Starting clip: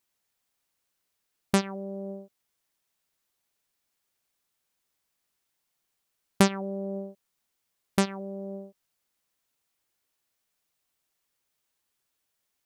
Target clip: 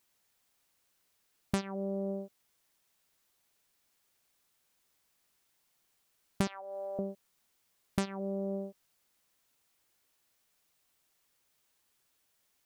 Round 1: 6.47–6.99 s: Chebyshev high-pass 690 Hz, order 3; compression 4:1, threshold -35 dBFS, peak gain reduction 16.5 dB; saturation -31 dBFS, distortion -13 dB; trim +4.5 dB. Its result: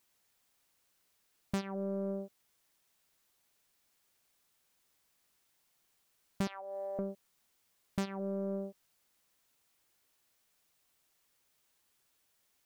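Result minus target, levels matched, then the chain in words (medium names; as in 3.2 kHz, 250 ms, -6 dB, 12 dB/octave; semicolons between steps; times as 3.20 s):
saturation: distortion +14 dB
6.47–6.99 s: Chebyshev high-pass 690 Hz, order 3; compression 4:1, threshold -35 dBFS, peak gain reduction 16.5 dB; saturation -20.5 dBFS, distortion -26 dB; trim +4.5 dB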